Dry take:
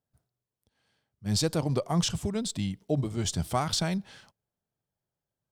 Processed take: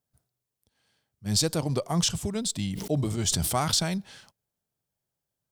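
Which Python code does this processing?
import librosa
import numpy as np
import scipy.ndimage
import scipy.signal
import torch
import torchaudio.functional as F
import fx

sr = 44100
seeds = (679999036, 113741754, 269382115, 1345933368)

y = fx.high_shelf(x, sr, hz=4300.0, db=7.5)
y = fx.sustainer(y, sr, db_per_s=37.0, at=(2.63, 3.79))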